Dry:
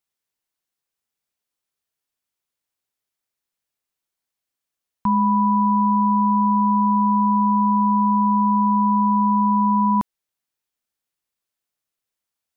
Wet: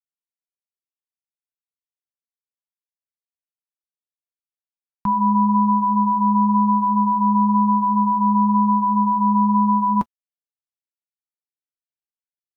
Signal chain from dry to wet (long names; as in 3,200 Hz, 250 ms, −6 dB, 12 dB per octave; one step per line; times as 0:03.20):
flanger 1 Hz, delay 6.2 ms, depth 3.6 ms, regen −44%
bit-depth reduction 12 bits, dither none
level +4.5 dB